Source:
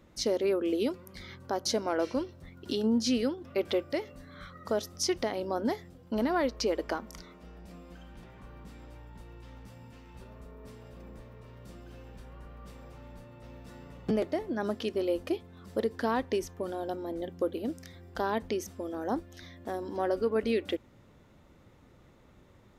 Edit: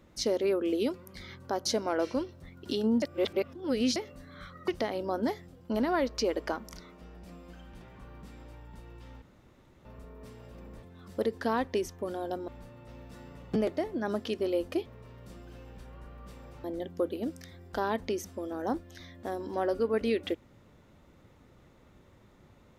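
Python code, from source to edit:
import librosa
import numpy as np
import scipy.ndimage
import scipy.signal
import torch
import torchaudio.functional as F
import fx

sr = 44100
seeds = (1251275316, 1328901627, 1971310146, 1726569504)

y = fx.edit(x, sr, fx.reverse_span(start_s=3.02, length_s=0.94),
    fx.cut(start_s=4.68, length_s=0.42),
    fx.room_tone_fill(start_s=9.64, length_s=0.63),
    fx.swap(start_s=11.25, length_s=1.78, other_s=15.41, other_length_s=1.65), tone=tone)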